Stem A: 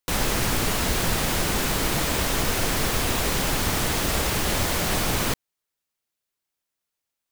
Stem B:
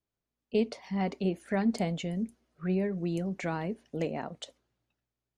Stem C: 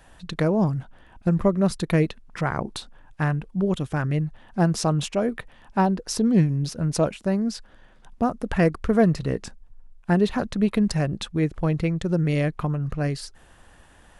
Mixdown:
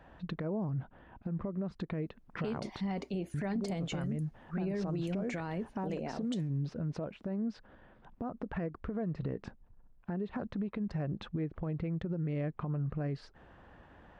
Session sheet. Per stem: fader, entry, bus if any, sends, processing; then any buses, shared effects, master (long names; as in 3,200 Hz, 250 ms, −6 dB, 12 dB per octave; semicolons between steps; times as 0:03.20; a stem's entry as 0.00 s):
muted
−1.5 dB, 1.90 s, no bus, no send, low-shelf EQ 84 Hz +9 dB
+1.5 dB, 0.00 s, muted 0:02.81–0:03.34, bus A, no send, high-pass filter 100 Hz 6 dB per octave; downward compressor, threshold −25 dBFS, peak gain reduction 11 dB
bus A: 0.0 dB, head-to-tape spacing loss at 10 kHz 40 dB; downward compressor, threshold −31 dBFS, peak gain reduction 8.5 dB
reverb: not used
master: brickwall limiter −27.5 dBFS, peak gain reduction 11 dB